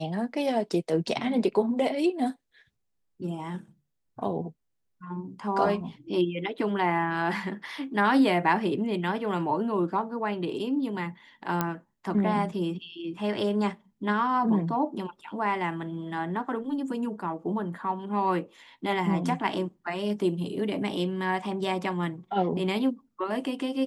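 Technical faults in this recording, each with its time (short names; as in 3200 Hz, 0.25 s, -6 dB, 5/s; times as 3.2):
11.61 pop -11 dBFS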